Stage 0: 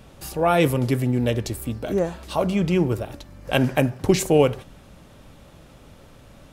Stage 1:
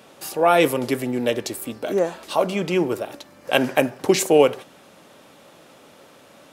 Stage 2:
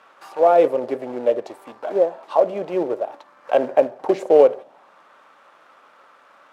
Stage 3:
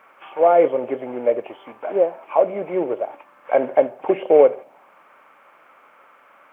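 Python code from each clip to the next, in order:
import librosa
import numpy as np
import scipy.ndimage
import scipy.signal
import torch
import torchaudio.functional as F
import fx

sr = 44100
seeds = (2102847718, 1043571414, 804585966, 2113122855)

y1 = scipy.signal.sosfilt(scipy.signal.butter(2, 310.0, 'highpass', fs=sr, output='sos'), x)
y1 = y1 * librosa.db_to_amplitude(3.5)
y2 = fx.quant_companded(y1, sr, bits=4)
y2 = fx.auto_wah(y2, sr, base_hz=570.0, top_hz=1300.0, q=2.4, full_db=-18.5, direction='down')
y2 = y2 * librosa.db_to_amplitude(5.5)
y3 = fx.freq_compress(y2, sr, knee_hz=2100.0, ratio=4.0)
y3 = fx.quant_dither(y3, sr, seeds[0], bits=12, dither='none')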